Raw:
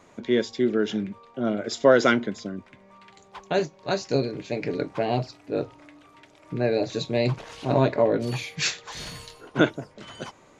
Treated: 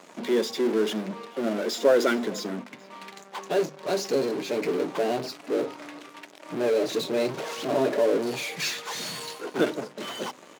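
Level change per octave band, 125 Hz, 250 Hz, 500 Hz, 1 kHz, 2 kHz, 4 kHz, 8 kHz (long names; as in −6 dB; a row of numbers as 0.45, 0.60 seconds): −12.0, −2.5, −0.5, −2.5, −3.0, 0.0, +1.0 decibels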